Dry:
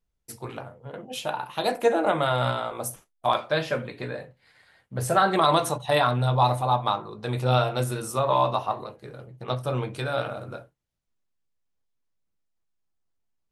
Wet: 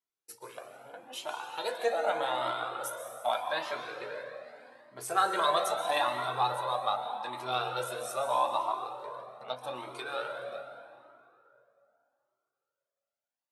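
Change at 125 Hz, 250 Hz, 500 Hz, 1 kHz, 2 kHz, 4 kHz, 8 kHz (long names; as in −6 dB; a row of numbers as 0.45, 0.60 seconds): −24.5, −16.0, −8.0, −5.5, −5.0, −5.0, −5.5 decibels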